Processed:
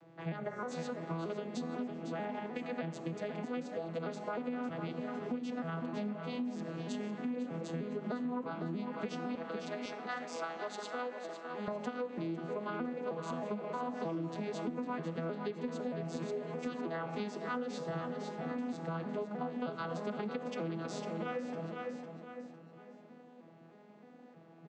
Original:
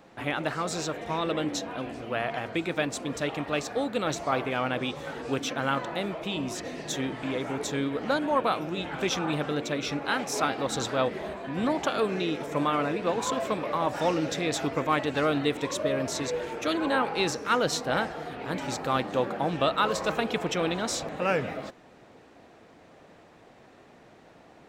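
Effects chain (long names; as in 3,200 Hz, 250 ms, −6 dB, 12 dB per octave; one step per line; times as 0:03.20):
vocoder with an arpeggio as carrier major triad, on E3, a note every 312 ms
0:00.37–0:00.71: gain on a spectral selection 2,300–5,300 Hz −11 dB
0:09.35–0:11.68: high-pass filter 590 Hz 12 dB per octave
convolution reverb RT60 1.1 s, pre-delay 45 ms, DRR 15.5 dB
flanger 0.78 Hz, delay 8.5 ms, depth 8.2 ms, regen +88%
repeating echo 504 ms, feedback 36%, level −9.5 dB
downward compressor 6 to 1, threshold −37 dBFS, peak gain reduction 13 dB
level +2 dB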